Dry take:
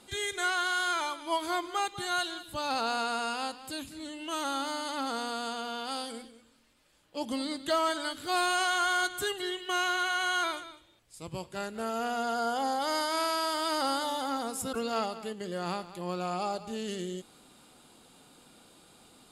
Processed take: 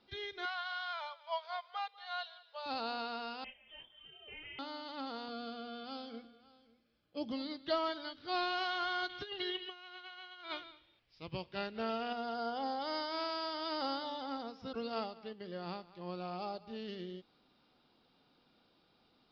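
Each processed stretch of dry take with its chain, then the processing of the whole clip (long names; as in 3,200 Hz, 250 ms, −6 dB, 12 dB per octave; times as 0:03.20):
0:00.45–0:02.66: linear-phase brick-wall high-pass 440 Hz + high-shelf EQ 6,700 Hz −10 dB
0:03.44–0:04.59: voice inversion scrambler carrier 3,400 Hz + micro pitch shift up and down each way 17 cents
0:05.28–0:07.31: low-shelf EQ 230 Hz +10 dB + notch comb filter 930 Hz + single-tap delay 555 ms −17 dB
0:09.09–0:12.13: parametric band 2,600 Hz +6.5 dB 1.2 octaves + compressor whose output falls as the input rises −32 dBFS, ratio −0.5
whole clip: Butterworth low-pass 5,500 Hz 96 dB per octave; dynamic equaliser 1,500 Hz, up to −4 dB, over −41 dBFS, Q 0.81; expander for the loud parts 1.5 to 1, over −45 dBFS; level −3 dB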